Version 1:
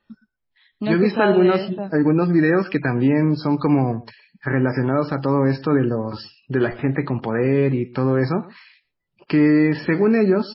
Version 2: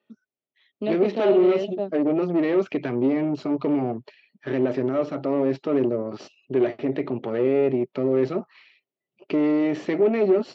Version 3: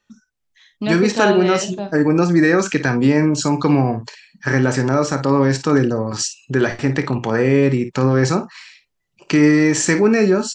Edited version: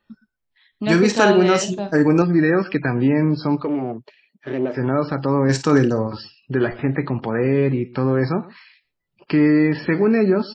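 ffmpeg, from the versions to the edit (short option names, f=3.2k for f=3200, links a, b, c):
-filter_complex "[2:a]asplit=2[a][b];[0:a]asplit=4[c][d][e][f];[c]atrim=end=0.872[g];[a]atrim=start=0.868:end=2.222[h];[d]atrim=start=2.218:end=3.71[i];[1:a]atrim=start=3.55:end=4.84[j];[e]atrim=start=4.68:end=5.492[k];[b]atrim=start=5.488:end=6.072[l];[f]atrim=start=6.068[m];[g][h]acrossfade=d=0.004:c1=hsin:c2=hsin[n];[n][i]acrossfade=d=0.004:c1=hsin:c2=hsin[o];[o][j]acrossfade=d=0.16:c1=tri:c2=tri[p];[p][k]acrossfade=d=0.16:c1=tri:c2=tri[q];[q][l]acrossfade=d=0.004:c1=hsin:c2=hsin[r];[r][m]acrossfade=d=0.004:c1=hsin:c2=hsin"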